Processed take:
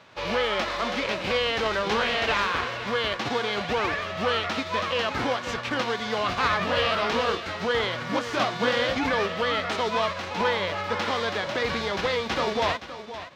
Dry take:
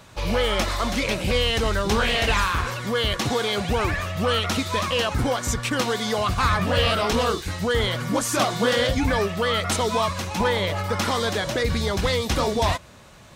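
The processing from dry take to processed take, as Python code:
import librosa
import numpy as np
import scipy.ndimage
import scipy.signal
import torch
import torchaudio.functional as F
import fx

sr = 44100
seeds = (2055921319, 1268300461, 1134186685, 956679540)

p1 = fx.envelope_flatten(x, sr, power=0.6)
p2 = fx.highpass(p1, sr, hz=320.0, slope=6)
p3 = fx.air_absorb(p2, sr, metres=230.0)
y = p3 + fx.echo_single(p3, sr, ms=519, db=-12.5, dry=0)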